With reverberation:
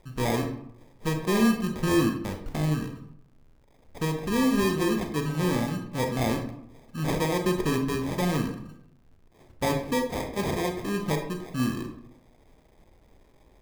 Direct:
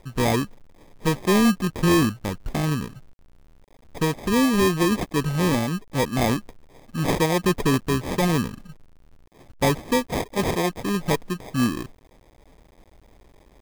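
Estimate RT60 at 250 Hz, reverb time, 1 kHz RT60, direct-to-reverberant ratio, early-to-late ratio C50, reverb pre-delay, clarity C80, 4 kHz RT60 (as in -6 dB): 0.85 s, 0.75 s, 0.70 s, 4.0 dB, 7.0 dB, 28 ms, 10.5 dB, 0.40 s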